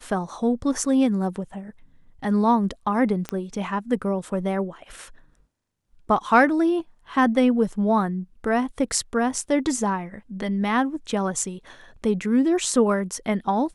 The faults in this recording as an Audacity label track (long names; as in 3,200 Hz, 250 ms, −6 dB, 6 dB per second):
3.290000	3.290000	click −13 dBFS